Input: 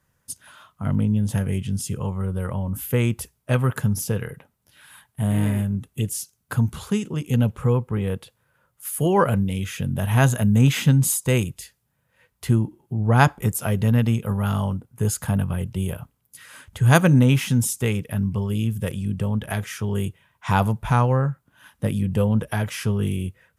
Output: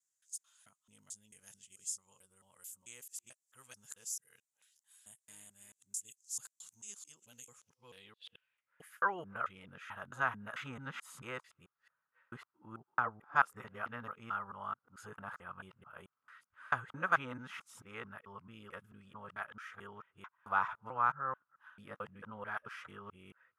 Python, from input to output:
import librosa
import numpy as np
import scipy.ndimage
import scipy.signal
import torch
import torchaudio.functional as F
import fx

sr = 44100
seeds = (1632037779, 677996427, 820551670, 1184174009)

y = fx.local_reverse(x, sr, ms=220.0)
y = fx.filter_sweep_bandpass(y, sr, from_hz=7200.0, to_hz=1300.0, start_s=7.51, end_s=9.16, q=4.6)
y = y * librosa.db_to_amplitude(-1.5)